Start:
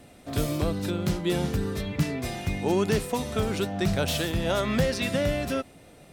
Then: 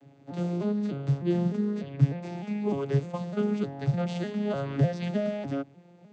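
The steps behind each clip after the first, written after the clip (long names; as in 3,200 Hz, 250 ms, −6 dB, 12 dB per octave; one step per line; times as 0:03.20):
vocoder with an arpeggio as carrier major triad, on C#3, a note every 302 ms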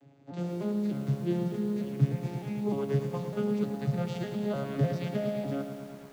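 feedback echo at a low word length 111 ms, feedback 80%, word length 8 bits, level −9 dB
level −3.5 dB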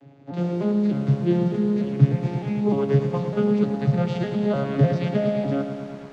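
high-frequency loss of the air 110 metres
level +9 dB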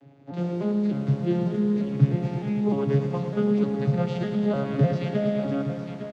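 single-tap delay 857 ms −10 dB
level −3 dB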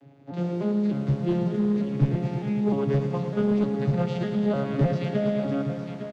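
asymmetric clip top −19 dBFS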